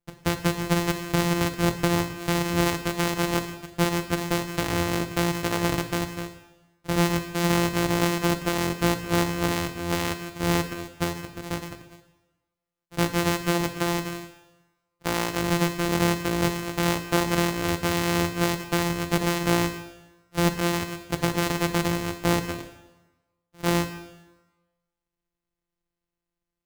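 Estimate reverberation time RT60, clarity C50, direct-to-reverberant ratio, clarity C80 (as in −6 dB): 1.1 s, 10.5 dB, 8.0 dB, 12.5 dB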